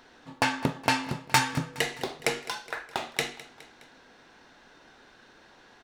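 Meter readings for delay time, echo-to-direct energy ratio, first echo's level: 0.208 s, -16.5 dB, -18.0 dB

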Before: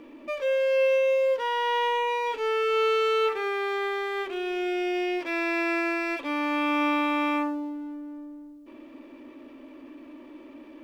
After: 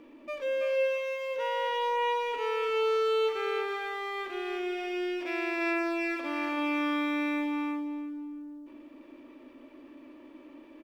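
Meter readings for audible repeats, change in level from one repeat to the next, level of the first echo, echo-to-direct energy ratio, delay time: 3, -14.5 dB, -5.0 dB, -5.0 dB, 0.33 s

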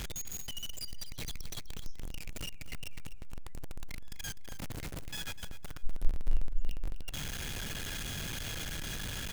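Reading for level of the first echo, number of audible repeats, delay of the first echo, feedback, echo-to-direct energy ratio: -13.0 dB, 2, 0.251 s, 25%, -12.5 dB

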